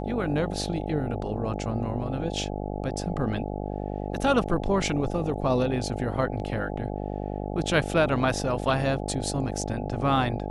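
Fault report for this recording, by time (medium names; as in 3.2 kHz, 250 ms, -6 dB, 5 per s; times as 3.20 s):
buzz 50 Hz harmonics 17 -32 dBFS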